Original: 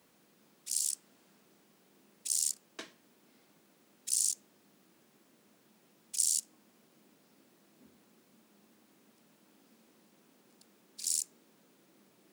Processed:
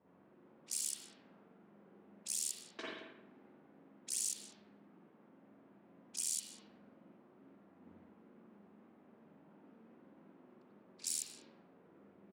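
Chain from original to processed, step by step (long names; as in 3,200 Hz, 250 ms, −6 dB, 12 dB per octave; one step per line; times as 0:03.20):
brickwall limiter −23 dBFS, peak gain reduction 9.5 dB
on a send: single-tap delay 196 ms −17.5 dB
on the sum: spring reverb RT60 1 s, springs 44/55 ms, chirp 50 ms, DRR −6 dB
low-pass that shuts in the quiet parts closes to 1,000 Hz, open at −35.5 dBFS
level −3 dB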